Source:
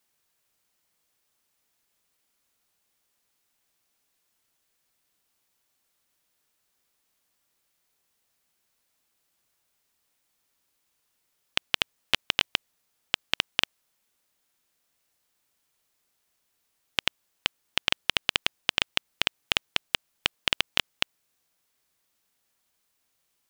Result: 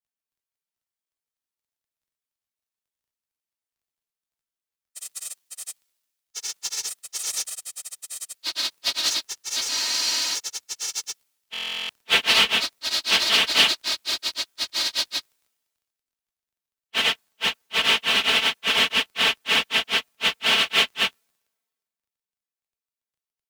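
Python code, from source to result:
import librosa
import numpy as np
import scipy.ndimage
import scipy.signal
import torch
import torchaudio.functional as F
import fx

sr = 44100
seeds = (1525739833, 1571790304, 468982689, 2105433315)

p1 = fx.phase_scramble(x, sr, seeds[0], window_ms=100)
p2 = scipy.signal.sosfilt(scipy.signal.butter(2, 52.0, 'highpass', fs=sr, output='sos'), p1)
p3 = fx.low_shelf(p2, sr, hz=140.0, db=-9.5)
p4 = p3 + 0.97 * np.pad(p3, (int(4.5 * sr / 1000.0), 0))[:len(p3)]
p5 = np.clip(p4, -10.0 ** (-23.5 / 20.0), 10.0 ** (-23.5 / 20.0))
p6 = p4 + (p5 * librosa.db_to_amplitude(-4.0))
p7 = fx.dmg_crackle(p6, sr, seeds[1], per_s=15.0, level_db=-43.0)
p8 = fx.echo_pitch(p7, sr, ms=293, semitones=6, count=3, db_per_echo=-3.0)
p9 = fx.buffer_glitch(p8, sr, at_s=(11.52,), block=1024, repeats=15)
p10 = fx.spec_freeze(p9, sr, seeds[2], at_s=9.7, hold_s=0.65)
y = fx.band_widen(p10, sr, depth_pct=70)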